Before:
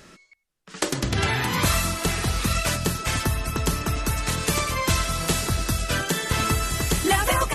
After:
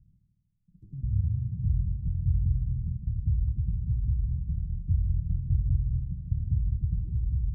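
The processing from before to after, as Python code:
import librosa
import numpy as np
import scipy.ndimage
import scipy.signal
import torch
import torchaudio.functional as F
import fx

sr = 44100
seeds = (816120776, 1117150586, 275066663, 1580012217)

y = scipy.signal.sosfilt(scipy.signal.cheby2(4, 70, 570.0, 'lowpass', fs=sr, output='sos'), x)
y = fx.echo_heads(y, sr, ms=78, heads='first and second', feedback_pct=64, wet_db=-10)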